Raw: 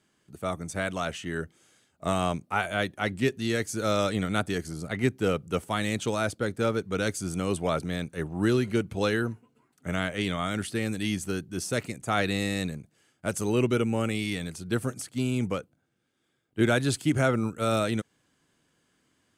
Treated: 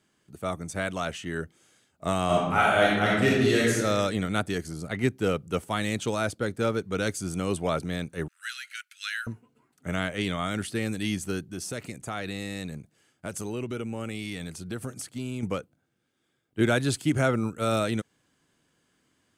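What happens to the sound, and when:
0:02.25–0:03.74: thrown reverb, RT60 1.2 s, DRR −5.5 dB
0:08.28–0:09.27: Butterworth high-pass 1,400 Hz 72 dB per octave
0:11.48–0:15.43: downward compressor 3 to 1, threshold −31 dBFS

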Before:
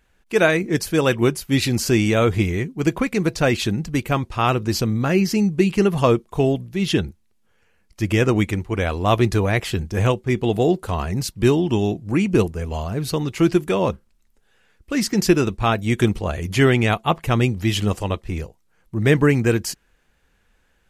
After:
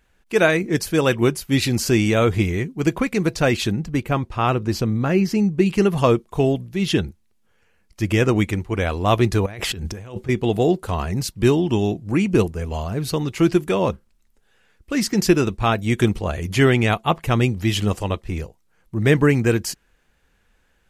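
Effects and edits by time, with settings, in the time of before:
0:03.72–0:05.66: high-shelf EQ 2,800 Hz −7 dB
0:09.46–0:10.29: compressor whose output falls as the input rises −31 dBFS

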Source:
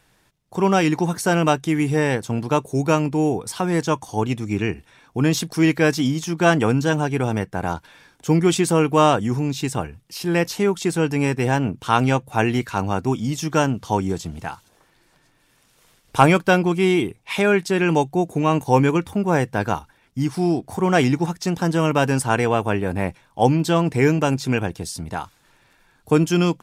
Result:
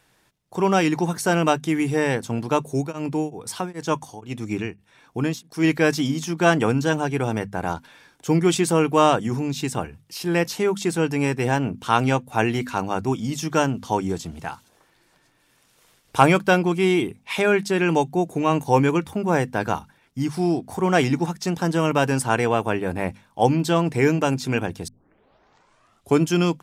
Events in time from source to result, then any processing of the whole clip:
0:02.80–0:05.63: tremolo along a rectified sine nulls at 2.9 Hz → 1.3 Hz
0:24.88: tape start 1.33 s
whole clip: low-shelf EQ 70 Hz −7 dB; mains-hum notches 50/100/150/200/250 Hz; level −1 dB

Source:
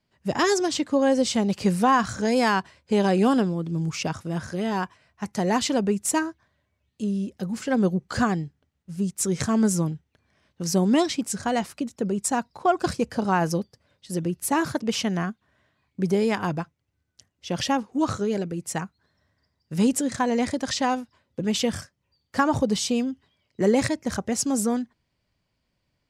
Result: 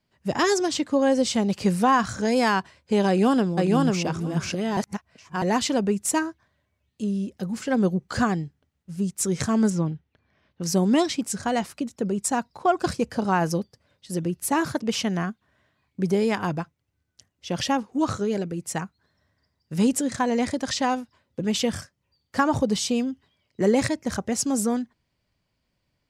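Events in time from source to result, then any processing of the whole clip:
0:03.08–0:04.05: delay throw 490 ms, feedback 10%, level −1.5 dB
0:04.77–0:05.42: reverse
0:09.70–0:10.63: low-pass filter 3,900 Hz

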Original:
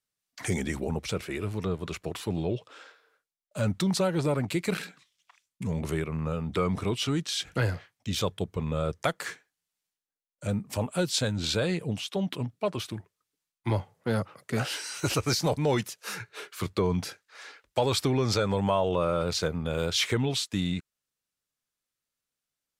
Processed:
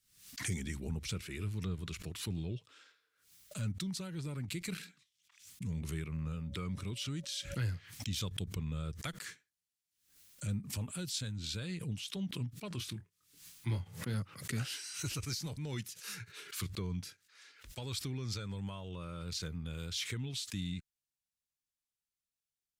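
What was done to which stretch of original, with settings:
0:06.12–0:07.62: steady tone 560 Hz −44 dBFS
0:12.68–0:14.14: double-tracking delay 24 ms −8 dB
whole clip: speech leveller within 3 dB 0.5 s; guitar amp tone stack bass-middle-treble 6-0-2; background raised ahead of every attack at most 95 dB per second; level +7 dB

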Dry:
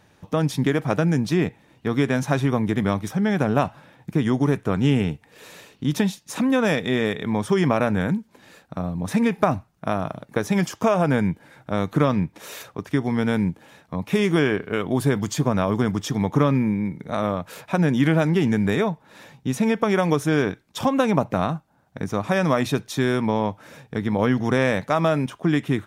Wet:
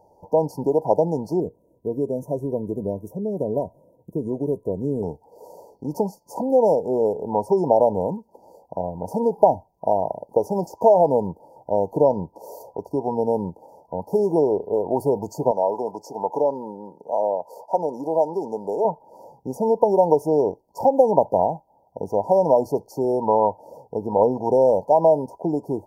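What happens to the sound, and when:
0:01.40–0:05.03: phaser with its sweep stopped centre 2,000 Hz, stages 4
0:15.51–0:18.85: meter weighting curve A
whole clip: brick-wall band-stop 980–4,300 Hz; graphic EQ with 10 bands 125 Hz −8 dB, 250 Hz −5 dB, 500 Hz +9 dB, 1,000 Hz +10 dB, 2,000 Hz −4 dB, 4,000 Hz −10 dB, 8,000 Hz −9 dB; level −2 dB

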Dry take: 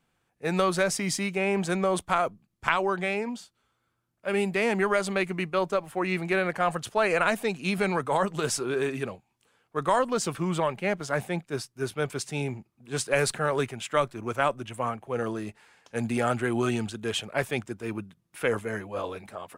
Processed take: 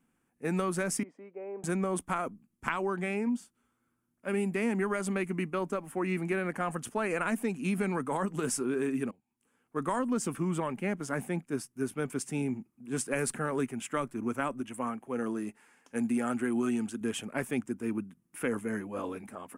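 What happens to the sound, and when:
0:01.03–0:01.64: four-pole ladder band-pass 570 Hz, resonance 55%
0:09.11–0:09.77: fade in, from −23 dB
0:14.61–0:17.01: low-shelf EQ 170 Hz −9 dB
whole clip: graphic EQ with 15 bands 100 Hz −5 dB, 250 Hz +12 dB, 630 Hz −5 dB, 4,000 Hz −12 dB, 10,000 Hz +6 dB; downward compressor 2 to 1, threshold −26 dBFS; level −3 dB

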